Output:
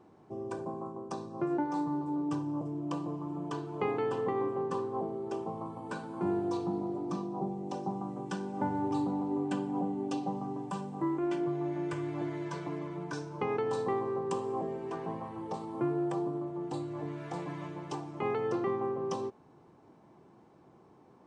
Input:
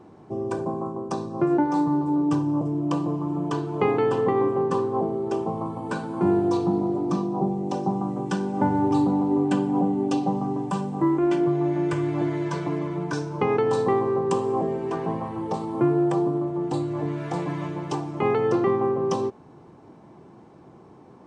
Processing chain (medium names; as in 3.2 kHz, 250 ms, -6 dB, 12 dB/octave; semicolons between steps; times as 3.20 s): bass shelf 360 Hz -3.5 dB; trim -8.5 dB